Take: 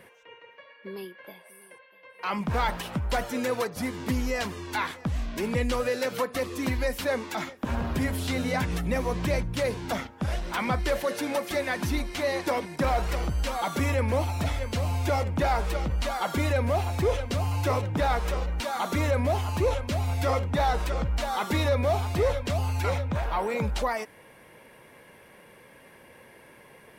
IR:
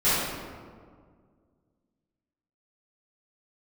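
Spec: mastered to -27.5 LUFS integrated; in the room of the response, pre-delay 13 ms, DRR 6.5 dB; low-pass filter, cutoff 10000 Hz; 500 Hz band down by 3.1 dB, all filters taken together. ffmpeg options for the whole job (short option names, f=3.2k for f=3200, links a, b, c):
-filter_complex "[0:a]lowpass=10k,equalizer=f=500:t=o:g=-3.5,asplit=2[a][b];[1:a]atrim=start_sample=2205,adelay=13[c];[b][c]afir=irnorm=-1:irlink=0,volume=-23dB[d];[a][d]amix=inputs=2:normalize=0"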